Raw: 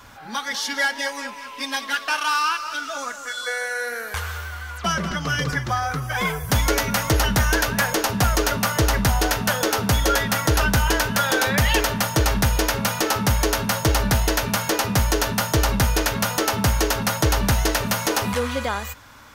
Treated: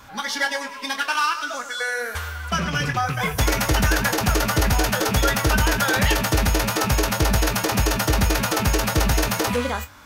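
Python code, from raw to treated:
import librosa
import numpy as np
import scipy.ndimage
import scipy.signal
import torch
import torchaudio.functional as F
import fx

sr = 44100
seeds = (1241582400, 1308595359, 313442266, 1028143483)

y = fx.rattle_buzz(x, sr, strikes_db=-26.0, level_db=-21.0)
y = fx.room_flutter(y, sr, wall_m=7.1, rt60_s=0.27)
y = fx.stretch_vocoder(y, sr, factor=0.52)
y = y * 10.0 ** (1.0 / 20.0)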